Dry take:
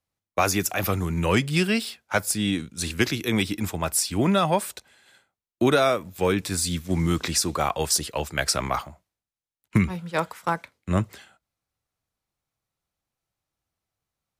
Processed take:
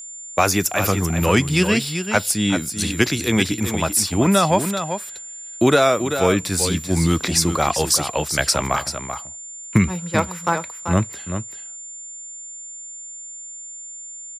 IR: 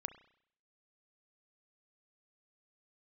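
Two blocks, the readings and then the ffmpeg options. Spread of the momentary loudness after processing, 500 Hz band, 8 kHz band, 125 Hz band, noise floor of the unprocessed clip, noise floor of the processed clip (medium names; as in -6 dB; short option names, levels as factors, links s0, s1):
16 LU, +5.0 dB, +7.0 dB, +5.0 dB, under -85 dBFS, -36 dBFS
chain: -af "aecho=1:1:387:0.376,aeval=exprs='val(0)+0.0126*sin(2*PI*7200*n/s)':c=same,volume=1.68"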